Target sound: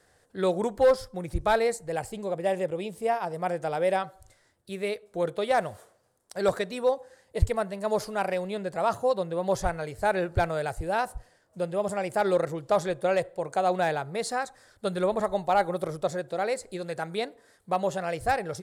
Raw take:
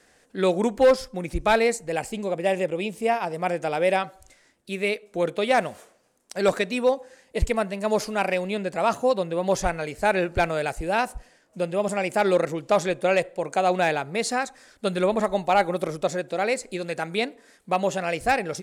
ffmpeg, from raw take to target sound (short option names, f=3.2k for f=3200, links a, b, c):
-af "equalizer=f=100:t=o:w=0.67:g=11,equalizer=f=250:t=o:w=0.67:g=-8,equalizer=f=2.5k:t=o:w=0.67:g=-9,equalizer=f=6.3k:t=o:w=0.67:g=-5,volume=-2.5dB"